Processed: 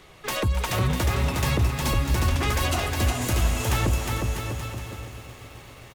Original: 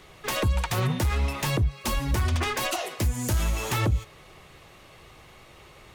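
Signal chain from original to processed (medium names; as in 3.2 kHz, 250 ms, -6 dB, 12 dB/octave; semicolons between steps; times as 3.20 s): bouncing-ball echo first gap 360 ms, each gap 0.8×, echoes 5; bit-crushed delay 263 ms, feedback 80%, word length 8-bit, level -15 dB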